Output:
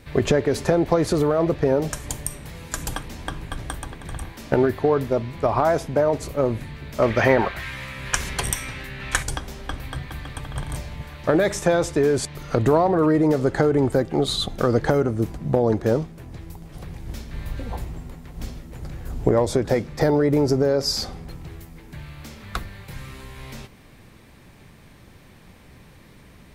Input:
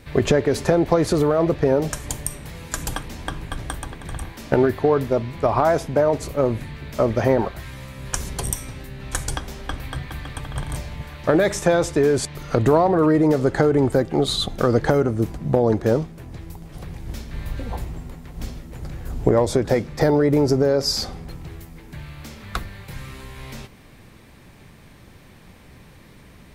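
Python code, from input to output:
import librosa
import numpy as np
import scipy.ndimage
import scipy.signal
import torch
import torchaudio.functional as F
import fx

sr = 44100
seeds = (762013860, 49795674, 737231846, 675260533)

y = fx.peak_eq(x, sr, hz=2100.0, db=12.0, octaves=2.1, at=(7.02, 9.23))
y = y * librosa.db_to_amplitude(-1.5)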